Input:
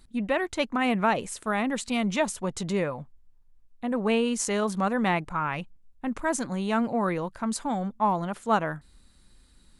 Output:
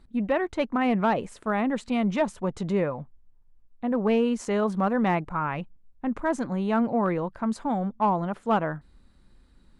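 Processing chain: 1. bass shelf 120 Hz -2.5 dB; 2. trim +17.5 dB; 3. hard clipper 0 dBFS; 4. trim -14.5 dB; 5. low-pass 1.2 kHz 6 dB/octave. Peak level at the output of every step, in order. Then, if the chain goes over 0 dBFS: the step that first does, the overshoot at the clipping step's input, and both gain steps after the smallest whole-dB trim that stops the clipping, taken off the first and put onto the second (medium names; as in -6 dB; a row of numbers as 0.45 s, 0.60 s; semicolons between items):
-11.0 dBFS, +6.5 dBFS, 0.0 dBFS, -14.5 dBFS, -14.5 dBFS; step 2, 6.5 dB; step 2 +10.5 dB, step 4 -7.5 dB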